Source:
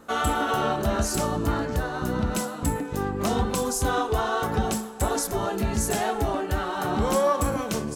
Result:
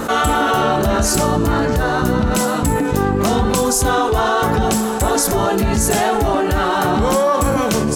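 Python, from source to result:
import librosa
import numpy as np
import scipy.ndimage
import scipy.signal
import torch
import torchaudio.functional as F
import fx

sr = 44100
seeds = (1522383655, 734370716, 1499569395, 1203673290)

y = fx.env_flatten(x, sr, amount_pct=70)
y = y * 10.0 ** (5.5 / 20.0)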